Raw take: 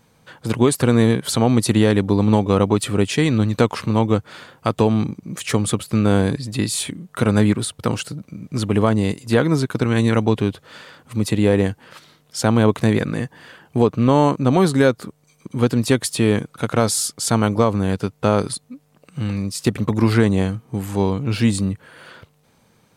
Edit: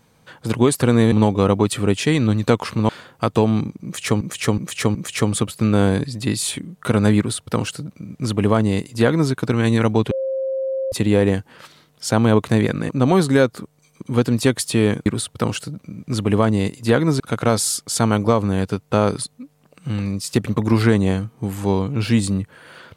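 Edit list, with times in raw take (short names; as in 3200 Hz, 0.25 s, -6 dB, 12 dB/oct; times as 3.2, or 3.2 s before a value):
1.12–2.23 cut
4–4.32 cut
5.27–5.64 loop, 4 plays
7.5–9.64 copy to 16.51
10.43–11.24 bleep 532 Hz -20 dBFS
13.21–14.34 cut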